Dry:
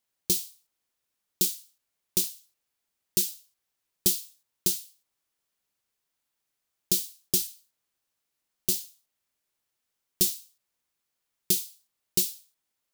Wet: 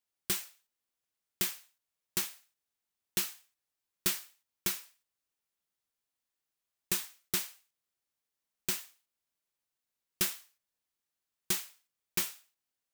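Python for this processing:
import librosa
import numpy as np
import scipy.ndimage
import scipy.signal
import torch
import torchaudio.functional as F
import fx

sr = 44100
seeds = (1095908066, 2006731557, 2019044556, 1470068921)

y = fx.bit_reversed(x, sr, seeds[0], block=16)
y = F.gain(torch.from_numpy(y), -7.0).numpy()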